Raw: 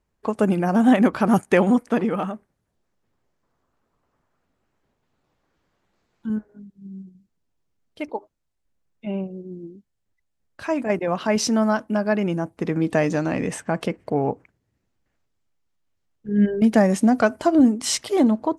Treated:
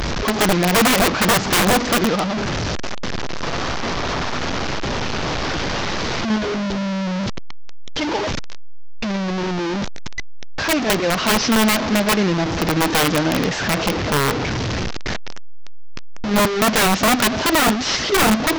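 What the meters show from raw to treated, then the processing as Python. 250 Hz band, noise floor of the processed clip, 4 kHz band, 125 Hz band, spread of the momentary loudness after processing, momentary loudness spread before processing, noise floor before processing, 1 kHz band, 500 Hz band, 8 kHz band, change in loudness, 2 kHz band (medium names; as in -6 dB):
+0.5 dB, -22 dBFS, +15.5 dB, +5.5 dB, 11 LU, 19 LU, -75 dBFS, +7.5 dB, +2.5 dB, +10.0 dB, +2.0 dB, +11.0 dB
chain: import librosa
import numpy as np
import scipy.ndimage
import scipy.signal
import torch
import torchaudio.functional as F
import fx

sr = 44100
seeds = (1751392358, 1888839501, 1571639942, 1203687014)

y = fx.delta_mod(x, sr, bps=32000, step_db=-20.5)
y = (np.mod(10.0 ** (14.5 / 20.0) * y + 1.0, 2.0) - 1.0) / 10.0 ** (14.5 / 20.0)
y = F.gain(torch.from_numpy(y), 4.5).numpy()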